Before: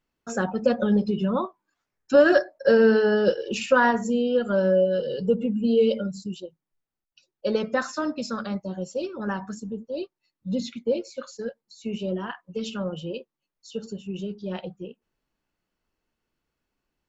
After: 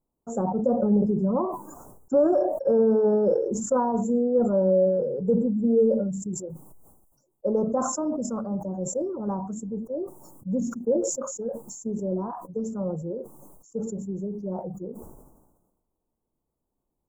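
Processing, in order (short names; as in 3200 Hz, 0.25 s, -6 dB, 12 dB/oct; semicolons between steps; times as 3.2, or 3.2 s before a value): limiter -13 dBFS, peak gain reduction 6 dB; inverse Chebyshev band-stop 2000–4100 Hz, stop band 60 dB; sustainer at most 46 dB/s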